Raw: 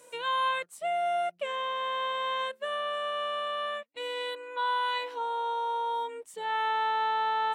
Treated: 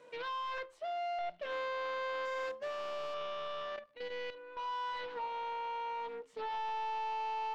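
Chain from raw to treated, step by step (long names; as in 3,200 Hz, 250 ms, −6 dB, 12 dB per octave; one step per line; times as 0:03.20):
0:02.25–0:03.14: bad sample-rate conversion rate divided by 6×, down filtered, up hold
high-shelf EQ 5,400 Hz +3 dB
soft clipping −35.5 dBFS, distortion −8 dB
0:00.58–0:01.19: Butterworth high-pass 300 Hz 96 dB per octave
on a send at −12 dB: convolution reverb RT60 0.40 s, pre-delay 5 ms
on the sum: surface crackle 79 per second −51 dBFS
high-frequency loss of the air 240 metres
0:03.76–0:04.57: output level in coarse steps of 10 dB
highs frequency-modulated by the lows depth 0.2 ms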